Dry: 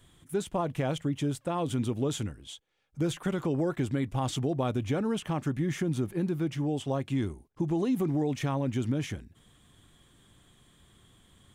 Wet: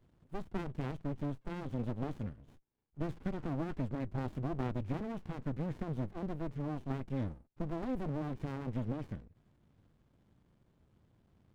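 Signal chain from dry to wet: low-pass 1.4 kHz 6 dB/octave; bass shelf 100 Hz -5.5 dB; sliding maximum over 65 samples; trim -3.5 dB

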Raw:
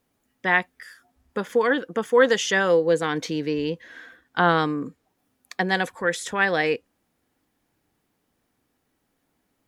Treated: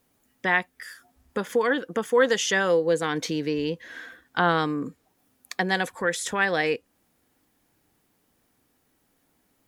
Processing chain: treble shelf 6.7 kHz +6 dB; in parallel at +2 dB: compression, threshold -31 dBFS, peak gain reduction 18 dB; on the sum: trim -4.5 dB

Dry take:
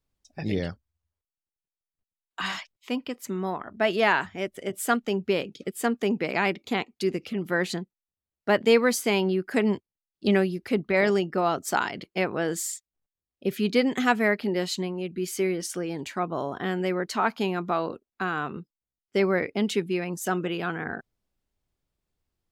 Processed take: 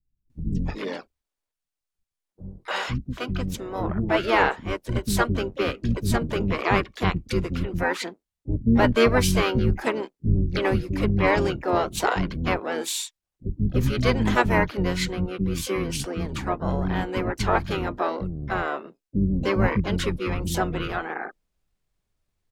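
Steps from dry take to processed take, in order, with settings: octave divider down 2 oct, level -3 dB; harmony voices -12 st 0 dB, -4 st -10 dB, +5 st -13 dB; bands offset in time lows, highs 300 ms, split 280 Hz

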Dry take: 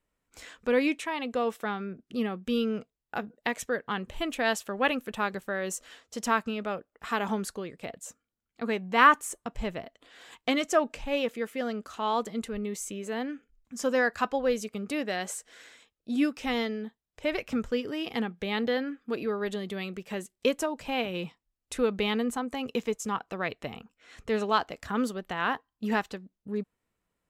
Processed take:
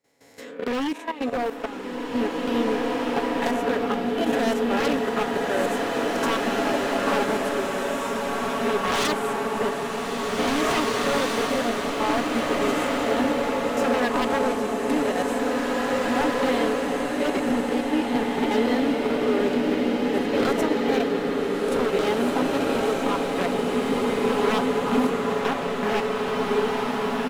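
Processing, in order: reverse spectral sustain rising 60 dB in 0.70 s; high-pass 140 Hz 12 dB/octave; peaking EQ 2.2 kHz -6 dB 2.1 oct; comb 7.2 ms, depth 56%; in parallel at +1 dB: compression 5:1, threshold -37 dBFS, peak gain reduction 21 dB; on the sum: peaking EQ 7.8 kHz -10 dB 1.8 oct; echo with a slow build-up 171 ms, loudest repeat 5, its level -17.5 dB; wavefolder -21 dBFS; level held to a coarse grid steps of 14 dB; swelling reverb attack 2280 ms, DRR -3.5 dB; trim +3 dB

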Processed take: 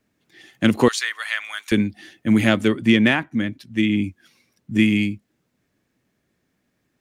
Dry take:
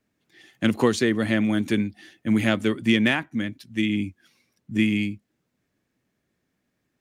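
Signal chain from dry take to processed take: 0.88–1.72 s: high-pass 1.1 kHz 24 dB/octave; 2.68–4.04 s: treble shelf 4.3 kHz -6 dB; trim +4.5 dB

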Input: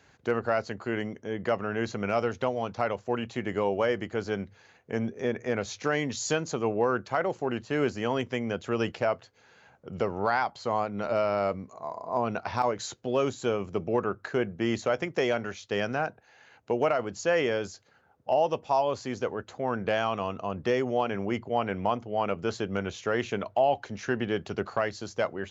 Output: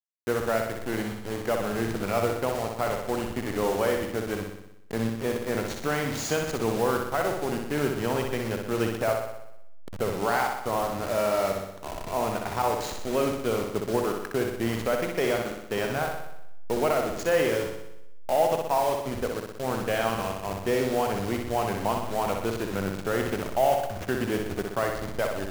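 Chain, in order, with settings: send-on-delta sampling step -30.5 dBFS; flutter echo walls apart 10.6 m, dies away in 0.82 s

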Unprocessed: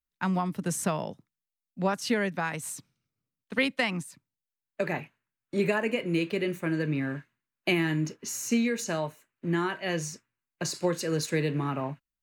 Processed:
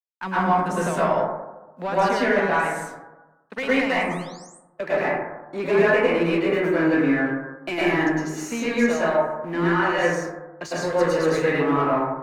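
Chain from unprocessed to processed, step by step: companding laws mixed up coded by A; bass shelf 150 Hz -6.5 dB; overdrive pedal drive 19 dB, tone 1.4 kHz, clips at -13.5 dBFS; painted sound rise, 3.86–4.47 s, 1.4–9.2 kHz -49 dBFS; plate-style reverb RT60 1.1 s, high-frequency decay 0.25×, pre-delay 95 ms, DRR -9 dB; trim -4 dB

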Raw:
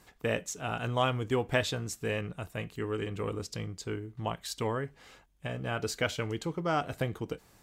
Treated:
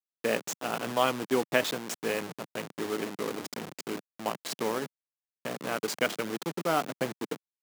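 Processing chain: send-on-delta sampling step -32 dBFS; high-pass 180 Hz 24 dB/octave; trim +3 dB

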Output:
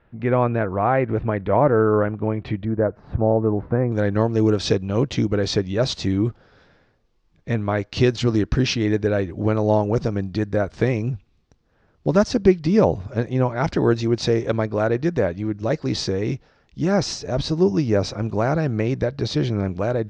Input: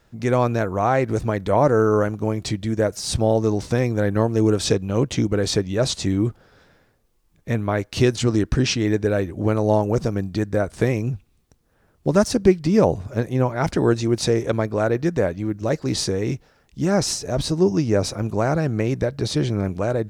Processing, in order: low-pass 2.7 kHz 24 dB/octave, from 2.65 s 1.5 kHz, from 3.92 s 5.5 kHz

